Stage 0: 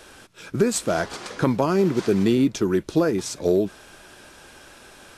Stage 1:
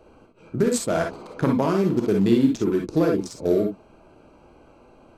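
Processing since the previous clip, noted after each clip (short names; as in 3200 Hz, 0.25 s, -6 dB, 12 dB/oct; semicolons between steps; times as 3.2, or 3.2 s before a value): Wiener smoothing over 25 samples; non-linear reverb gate 80 ms rising, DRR 1.5 dB; gain -1.5 dB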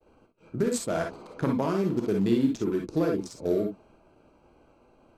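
expander -48 dBFS; gain -5.5 dB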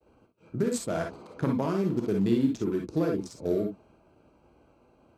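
HPF 55 Hz; low shelf 170 Hz +5.5 dB; gain -2.5 dB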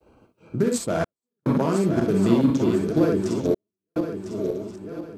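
regenerating reverse delay 0.501 s, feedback 59%, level -5 dB; step gate "xxxxx..xxxxx" 72 bpm -60 dB; gain +5.5 dB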